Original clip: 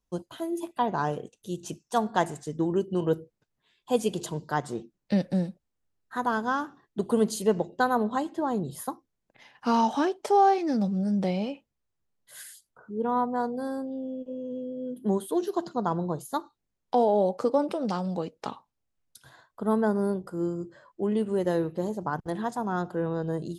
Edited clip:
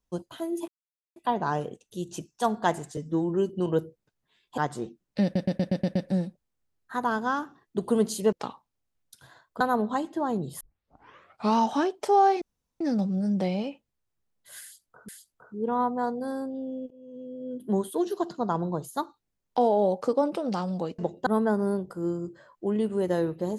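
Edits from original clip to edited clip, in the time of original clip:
0:00.68: splice in silence 0.48 s
0:02.49–0:02.84: time-stretch 1.5×
0:03.92–0:04.51: remove
0:05.17: stutter 0.12 s, 7 plays
0:07.54–0:07.82: swap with 0:18.35–0:19.63
0:08.82: tape start 0.96 s
0:10.63: splice in room tone 0.39 s
0:12.45–0:12.91: repeat, 2 plays
0:14.27–0:14.96: fade in, from −21 dB

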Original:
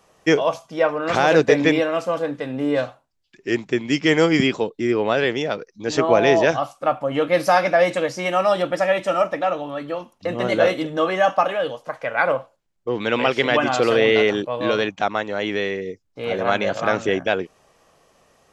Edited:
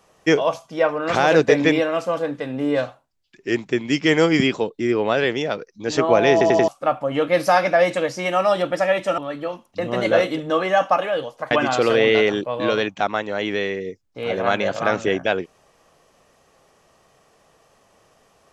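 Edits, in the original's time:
0:06.32: stutter in place 0.09 s, 4 plays
0:09.18–0:09.65: remove
0:11.98–0:13.52: remove

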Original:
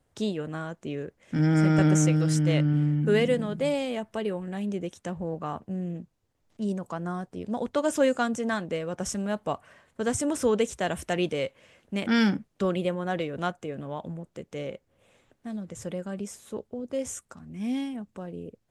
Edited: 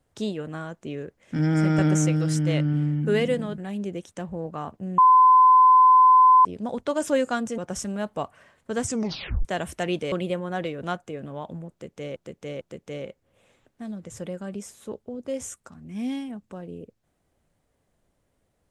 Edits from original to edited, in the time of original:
0:03.58–0:04.46: remove
0:05.86–0:07.33: beep over 1,020 Hz −11 dBFS
0:08.46–0:08.88: remove
0:10.15: tape stop 0.60 s
0:11.42–0:12.67: remove
0:14.26–0:14.71: repeat, 3 plays

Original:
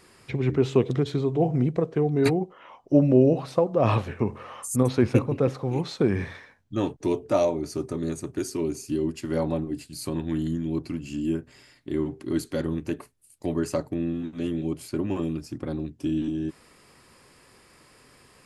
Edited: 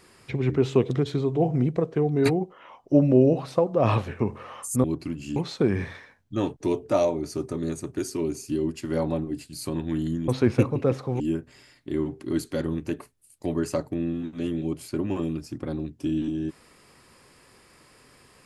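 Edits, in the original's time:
0:04.84–0:05.76: swap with 0:10.68–0:11.20

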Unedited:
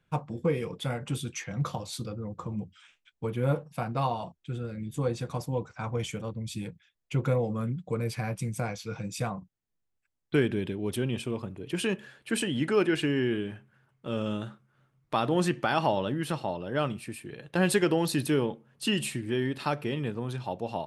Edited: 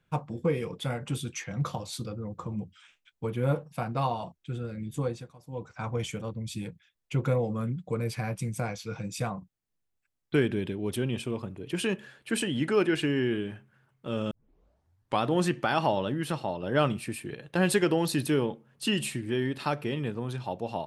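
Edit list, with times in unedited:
0:04.99–0:05.76: duck −20 dB, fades 0.34 s
0:14.31: tape start 0.92 s
0:16.63–0:17.35: clip gain +4 dB

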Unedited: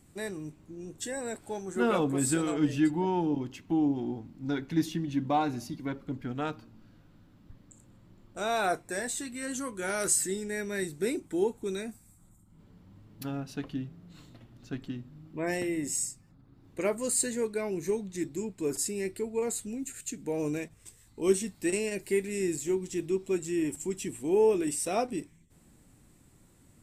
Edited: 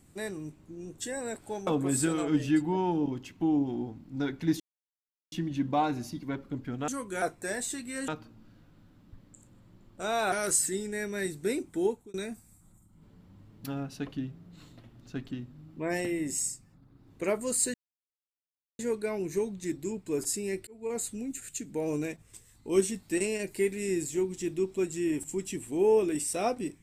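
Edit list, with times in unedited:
0:01.67–0:01.96: remove
0:04.89: splice in silence 0.72 s
0:06.45–0:08.69: swap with 0:09.55–0:09.89
0:11.43–0:11.71: fade out
0:17.31: splice in silence 1.05 s
0:19.19–0:19.53: fade in

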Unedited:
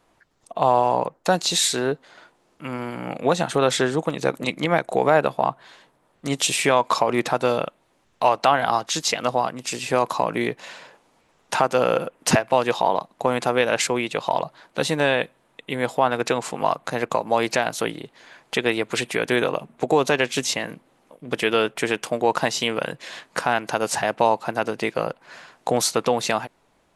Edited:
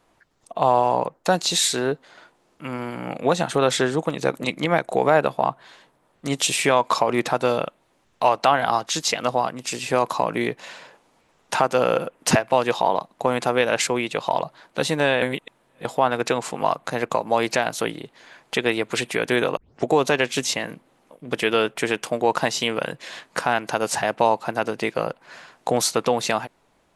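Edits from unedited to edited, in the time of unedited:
0:15.22–0:15.85: reverse
0:19.57: tape start 0.29 s

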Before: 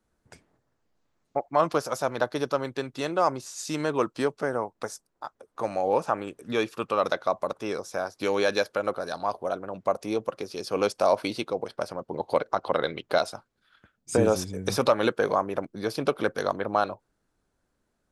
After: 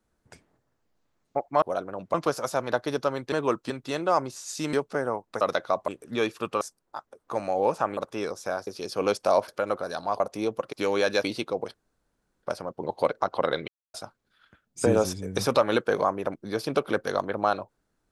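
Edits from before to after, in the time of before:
0:03.83–0:04.21: move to 0:02.80
0:04.89–0:06.25: swap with 0:06.98–0:07.45
0:08.15–0:08.65: swap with 0:10.42–0:11.23
0:09.37–0:09.89: move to 0:01.62
0:11.74: splice in room tone 0.69 s
0:12.99–0:13.25: silence

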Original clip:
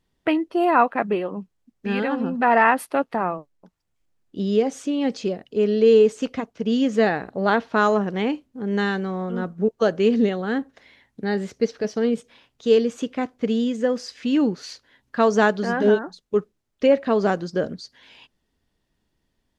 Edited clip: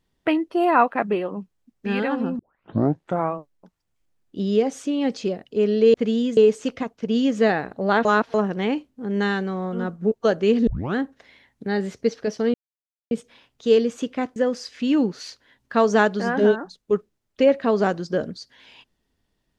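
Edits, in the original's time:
0:02.39: tape start 0.96 s
0:07.62–0:07.91: reverse
0:10.24: tape start 0.28 s
0:12.11: splice in silence 0.57 s
0:13.36–0:13.79: move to 0:05.94

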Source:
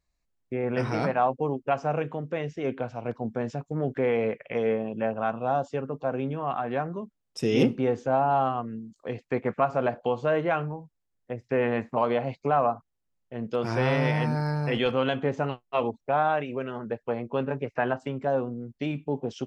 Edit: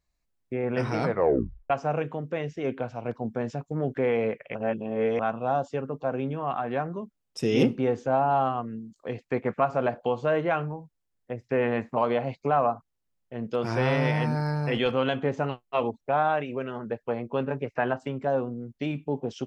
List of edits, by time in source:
0:01.03: tape stop 0.67 s
0:04.55–0:05.19: reverse

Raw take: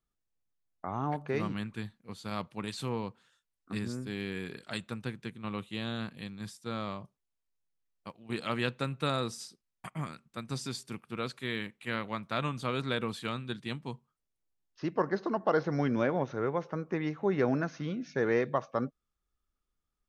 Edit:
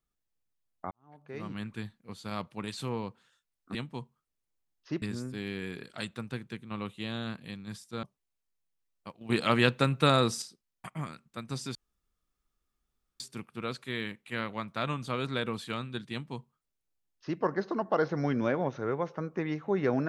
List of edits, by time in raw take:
0:00.91–0:01.67: fade in quadratic
0:06.76–0:07.03: remove
0:08.21–0:09.42: clip gain +7.5 dB
0:10.75: splice in room tone 1.45 s
0:13.67–0:14.94: duplicate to 0:03.75

